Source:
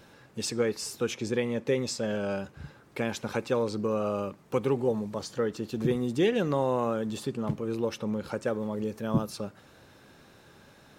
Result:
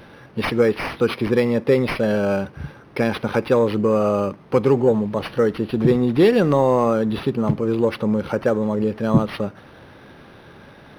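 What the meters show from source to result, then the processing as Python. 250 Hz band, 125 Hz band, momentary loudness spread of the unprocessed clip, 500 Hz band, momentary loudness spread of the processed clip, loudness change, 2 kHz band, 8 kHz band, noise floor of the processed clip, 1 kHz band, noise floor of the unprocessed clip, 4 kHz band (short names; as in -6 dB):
+11.0 dB, +10.5 dB, 8 LU, +10.5 dB, 7 LU, +10.5 dB, +10.0 dB, n/a, -46 dBFS, +10.5 dB, -56 dBFS, +5.0 dB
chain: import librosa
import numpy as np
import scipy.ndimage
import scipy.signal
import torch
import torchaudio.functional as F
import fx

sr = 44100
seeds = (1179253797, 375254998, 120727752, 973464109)

p1 = 10.0 ** (-21.5 / 20.0) * np.tanh(x / 10.0 ** (-21.5 / 20.0))
p2 = x + (p1 * librosa.db_to_amplitude(-5.0))
p3 = np.interp(np.arange(len(p2)), np.arange(len(p2))[::6], p2[::6])
y = p3 * librosa.db_to_amplitude(7.5)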